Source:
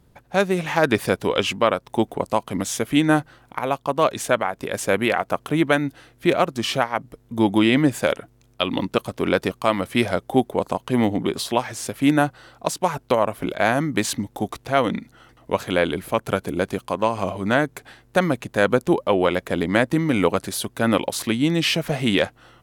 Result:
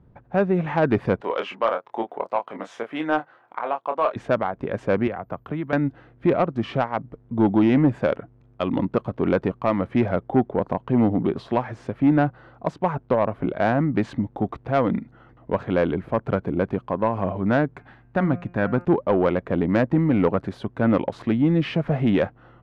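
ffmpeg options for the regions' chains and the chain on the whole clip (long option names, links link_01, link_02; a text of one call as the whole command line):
ffmpeg -i in.wav -filter_complex "[0:a]asettb=1/sr,asplit=3[link_01][link_02][link_03];[link_01]atrim=end=1.214[link_04];[link_02]atrim=start=1.21:end=4.16,asetpts=PTS-STARTPTS,afade=type=in:duration=0.004:curve=qsin,afade=type=out:start_time=2.946:duration=0.004:curve=qsin,highpass=590,asplit=2[link_05][link_06];[link_06]adelay=26,volume=-6.5dB[link_07];[link_05][link_07]amix=inputs=2:normalize=0,atrim=end_sample=130095[link_08];[link_03]atrim=start=4.156[link_09];[link_04][link_08]acrossfade=duration=0.004:curve1=hsin:curve2=qsin[link_10];[link_10][link_09]acrossfade=duration=0.004:curve1=qsin:curve2=hsin,asettb=1/sr,asplit=3[link_11][link_12][link_13];[link_11]atrim=end=5.074[link_14];[link_12]atrim=start=5.07:end=5.73,asetpts=PTS-STARTPTS,afade=type=in:duration=0.004:curve=qsin,afade=type=out:start_time=0.656:duration=0.004:curve=qsin,agate=range=-33dB:threshold=-43dB:ratio=3:release=100:detection=peak,acrossover=split=140|1000[link_15][link_16][link_17];[link_15]acompressor=threshold=-41dB:ratio=4[link_18];[link_16]acompressor=threshold=-31dB:ratio=4[link_19];[link_17]acompressor=threshold=-34dB:ratio=4[link_20];[link_18][link_19][link_20]amix=inputs=3:normalize=0,aeval=exprs='val(0)+0.01*sin(2*PI*14000*n/s)':channel_layout=same[link_21];[link_13]atrim=start=5.726[link_22];[link_14][link_21]acrossfade=duration=0.004:curve1=hsin:curve2=qsin[link_23];[link_23][link_22]acrossfade=duration=0.004:curve1=qsin:curve2=hsin,asettb=1/sr,asplit=3[link_24][link_25][link_26];[link_24]atrim=end=17.744[link_27];[link_25]atrim=start=17.74:end=18.85,asetpts=PTS-STARTPTS,afade=type=in:duration=0.004:curve=qsin,afade=type=out:start_time=1.106:duration=0.004:curve=qsin,equalizer=frequency=480:width_type=o:width=0.56:gain=-7.5,bandreject=frequency=175.9:width_type=h:width=4,bandreject=frequency=351.8:width_type=h:width=4,bandreject=frequency=527.7:width_type=h:width=4,bandreject=frequency=703.6:width_type=h:width=4,bandreject=frequency=879.5:width_type=h:width=4,bandreject=frequency=1055.4:width_type=h:width=4,bandreject=frequency=1231.3:width_type=h:width=4,bandreject=frequency=1407.2:width_type=h:width=4,bandreject=frequency=1583.1:width_type=h:width=4,bandreject=frequency=1759:width_type=h:width=4,bandreject=frequency=1934.9:width_type=h:width=4,bandreject=frequency=2110.8:width_type=h:width=4,bandreject=frequency=2286.7:width_type=h:width=4,bandreject=frequency=2462.6:width_type=h:width=4,bandreject=frequency=2638.5:width_type=h:width=4,bandreject=frequency=2814.4:width_type=h:width=4,aeval=exprs='clip(val(0),-1,0.237)':channel_layout=same[link_28];[link_26]atrim=start=18.846[link_29];[link_27][link_28]acrossfade=duration=0.004:curve1=hsin:curve2=qsin[link_30];[link_30][link_29]acrossfade=duration=0.004:curve1=qsin:curve2=hsin,lowpass=1500,equalizer=frequency=130:width=0.6:gain=4.5,acontrast=85,volume=-7.5dB" out.wav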